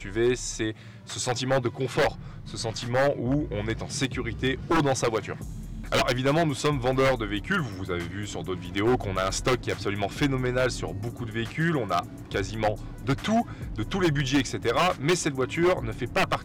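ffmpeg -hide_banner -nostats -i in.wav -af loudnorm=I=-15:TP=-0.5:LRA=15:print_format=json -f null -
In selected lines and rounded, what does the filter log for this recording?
"input_i" : "-26.8",
"input_tp" : "-15.6",
"input_lra" : "2.5",
"input_thresh" : "-36.9",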